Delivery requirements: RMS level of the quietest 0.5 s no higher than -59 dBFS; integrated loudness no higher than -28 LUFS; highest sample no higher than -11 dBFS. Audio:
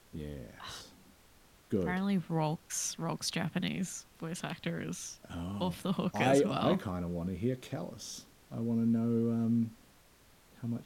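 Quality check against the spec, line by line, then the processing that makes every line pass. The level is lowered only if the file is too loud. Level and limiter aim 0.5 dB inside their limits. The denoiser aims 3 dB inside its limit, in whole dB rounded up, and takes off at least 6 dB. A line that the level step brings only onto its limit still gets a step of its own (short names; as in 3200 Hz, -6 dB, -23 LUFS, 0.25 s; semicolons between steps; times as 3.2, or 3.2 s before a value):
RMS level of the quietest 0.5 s -62 dBFS: OK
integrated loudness -34.0 LUFS: OK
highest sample -13.5 dBFS: OK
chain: none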